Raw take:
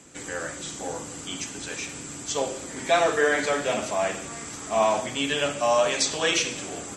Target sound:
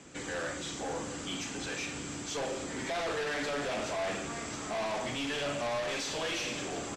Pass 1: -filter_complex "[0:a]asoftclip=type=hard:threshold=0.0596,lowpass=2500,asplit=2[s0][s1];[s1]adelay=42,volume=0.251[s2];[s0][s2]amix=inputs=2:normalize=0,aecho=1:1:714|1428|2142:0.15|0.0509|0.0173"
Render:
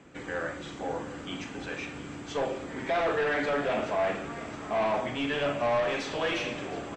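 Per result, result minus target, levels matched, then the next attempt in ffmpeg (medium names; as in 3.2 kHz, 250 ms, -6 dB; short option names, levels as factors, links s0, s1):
8 kHz band -14.0 dB; hard clipper: distortion -5 dB
-filter_complex "[0:a]asoftclip=type=hard:threshold=0.0596,lowpass=5700,asplit=2[s0][s1];[s1]adelay=42,volume=0.251[s2];[s0][s2]amix=inputs=2:normalize=0,aecho=1:1:714|1428|2142:0.15|0.0509|0.0173"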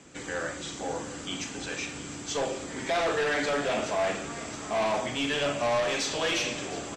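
hard clipper: distortion -5 dB
-filter_complex "[0:a]asoftclip=type=hard:threshold=0.0237,lowpass=5700,asplit=2[s0][s1];[s1]adelay=42,volume=0.251[s2];[s0][s2]amix=inputs=2:normalize=0,aecho=1:1:714|1428|2142:0.15|0.0509|0.0173"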